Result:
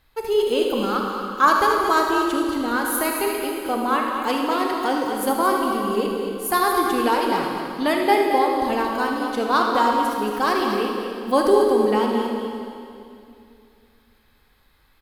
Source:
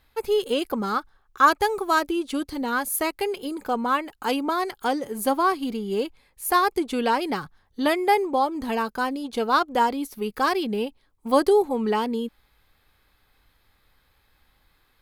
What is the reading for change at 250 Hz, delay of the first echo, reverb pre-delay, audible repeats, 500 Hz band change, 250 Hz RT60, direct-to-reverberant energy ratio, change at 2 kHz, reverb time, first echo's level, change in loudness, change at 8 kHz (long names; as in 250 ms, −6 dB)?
+3.5 dB, 76 ms, 25 ms, 2, +4.0 dB, 2.9 s, −0.5 dB, +3.0 dB, 2.6 s, −10.0 dB, +3.5 dB, +3.0 dB